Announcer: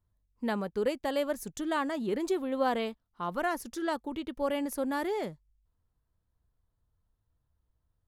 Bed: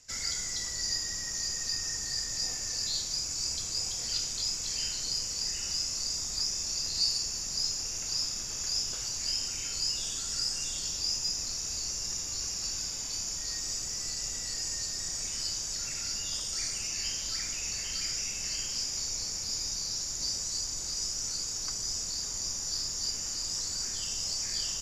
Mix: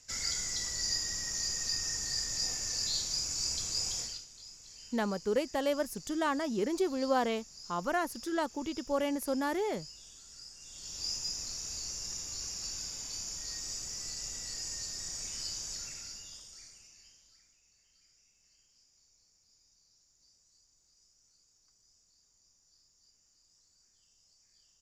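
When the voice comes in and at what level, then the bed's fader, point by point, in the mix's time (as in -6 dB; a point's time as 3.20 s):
4.50 s, -0.5 dB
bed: 4.00 s -1 dB
4.26 s -18.5 dB
10.58 s -18.5 dB
11.05 s -5 dB
15.73 s -5 dB
17.61 s -34.5 dB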